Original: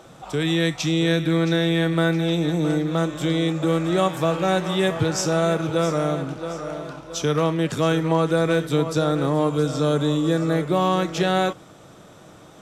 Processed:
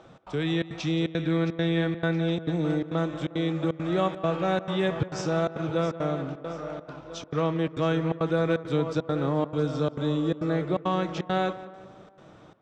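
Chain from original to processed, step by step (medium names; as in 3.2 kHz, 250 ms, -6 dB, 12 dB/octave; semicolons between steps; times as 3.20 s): treble shelf 8.3 kHz -4.5 dB; trance gate "xx.xxxx.xx" 170 bpm -60 dB; distance through air 120 m; tape echo 179 ms, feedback 57%, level -14 dB, low-pass 2.1 kHz; trim -4.5 dB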